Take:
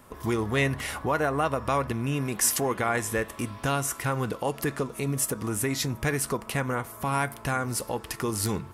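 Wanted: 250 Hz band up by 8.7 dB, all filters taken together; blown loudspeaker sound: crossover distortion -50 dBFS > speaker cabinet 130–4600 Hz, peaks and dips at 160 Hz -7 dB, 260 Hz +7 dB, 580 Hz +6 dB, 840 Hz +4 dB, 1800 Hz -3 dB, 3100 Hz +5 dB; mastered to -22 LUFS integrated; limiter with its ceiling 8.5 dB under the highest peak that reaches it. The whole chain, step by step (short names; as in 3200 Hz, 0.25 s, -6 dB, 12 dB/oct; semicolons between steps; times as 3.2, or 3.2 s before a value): bell 250 Hz +5.5 dB; limiter -19 dBFS; crossover distortion -50 dBFS; speaker cabinet 130–4600 Hz, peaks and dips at 160 Hz -7 dB, 260 Hz +7 dB, 580 Hz +6 dB, 840 Hz +4 dB, 1800 Hz -3 dB, 3100 Hz +5 dB; gain +6 dB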